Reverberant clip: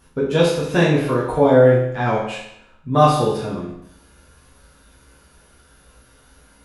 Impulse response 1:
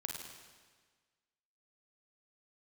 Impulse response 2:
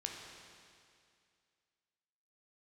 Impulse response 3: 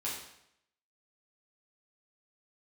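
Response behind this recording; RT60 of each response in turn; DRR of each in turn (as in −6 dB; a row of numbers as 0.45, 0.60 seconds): 3; 1.5, 2.3, 0.75 seconds; 0.5, 0.5, −7.5 decibels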